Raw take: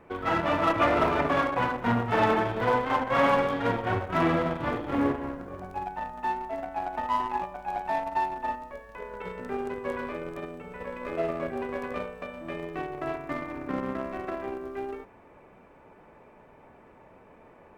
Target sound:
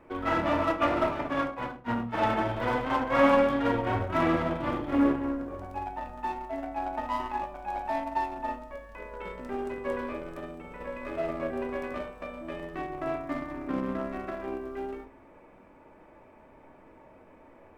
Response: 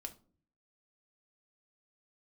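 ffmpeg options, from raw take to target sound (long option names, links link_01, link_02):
-filter_complex "[0:a]asplit=3[link_01][link_02][link_03];[link_01]afade=type=out:start_time=0.62:duration=0.02[link_04];[link_02]agate=range=-33dB:threshold=-19dB:ratio=3:detection=peak,afade=type=in:start_time=0.62:duration=0.02,afade=type=out:start_time=2.37:duration=0.02[link_05];[link_03]afade=type=in:start_time=2.37:duration=0.02[link_06];[link_04][link_05][link_06]amix=inputs=3:normalize=0[link_07];[1:a]atrim=start_sample=2205[link_08];[link_07][link_08]afir=irnorm=-1:irlink=0,volume=2.5dB"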